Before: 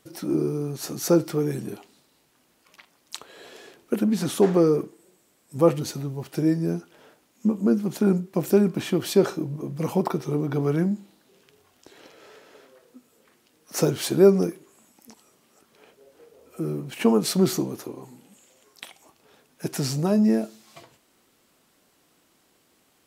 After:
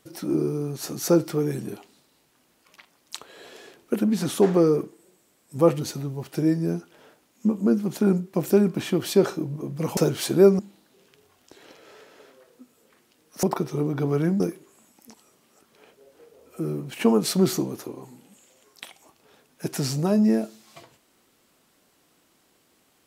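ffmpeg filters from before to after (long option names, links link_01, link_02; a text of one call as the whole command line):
ffmpeg -i in.wav -filter_complex "[0:a]asplit=5[link_01][link_02][link_03][link_04][link_05];[link_01]atrim=end=9.972[link_06];[link_02]atrim=start=13.778:end=14.402[link_07];[link_03]atrim=start=10.938:end=13.782[link_08];[link_04]atrim=start=9.968:end=10.942[link_09];[link_05]atrim=start=14.398[link_10];[link_06][link_07]acrossfade=duration=0.004:curve1=hsin:curve2=hsin[link_11];[link_11][link_08]acrossfade=duration=0.004:curve1=hsin:curve2=hsin[link_12];[link_12][link_09]acrossfade=duration=0.004:curve1=hsin:curve2=hsin[link_13];[link_13][link_10]acrossfade=duration=0.004:curve1=hsin:curve2=hsin" out.wav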